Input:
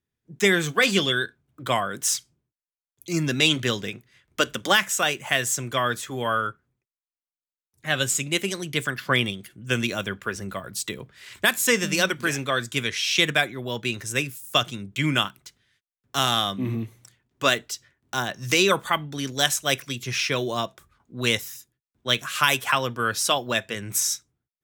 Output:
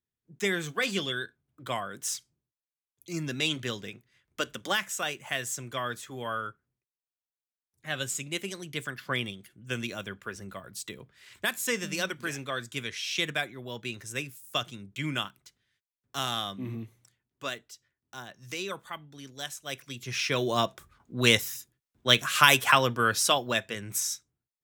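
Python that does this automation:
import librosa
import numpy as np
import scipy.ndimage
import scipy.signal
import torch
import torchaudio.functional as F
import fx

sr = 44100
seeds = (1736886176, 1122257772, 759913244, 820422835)

y = fx.gain(x, sr, db=fx.line((16.82, -9.0), (17.69, -16.0), (19.59, -16.0), (19.96, -8.5), (20.64, 1.5), (22.8, 1.5), (24.12, -7.0)))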